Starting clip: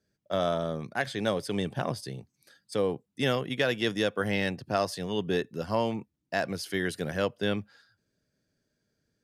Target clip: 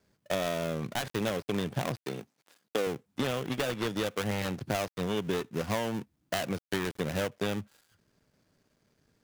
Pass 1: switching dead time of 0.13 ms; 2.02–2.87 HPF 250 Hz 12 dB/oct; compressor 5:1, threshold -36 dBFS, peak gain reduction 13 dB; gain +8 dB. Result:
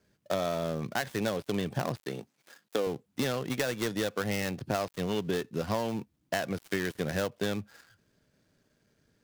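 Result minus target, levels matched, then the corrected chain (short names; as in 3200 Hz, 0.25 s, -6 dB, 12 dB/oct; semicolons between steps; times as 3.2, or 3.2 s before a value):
switching dead time: distortion -5 dB
switching dead time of 0.28 ms; 2.02–2.87 HPF 250 Hz 12 dB/oct; compressor 5:1, threshold -36 dBFS, peak gain reduction 12.5 dB; gain +8 dB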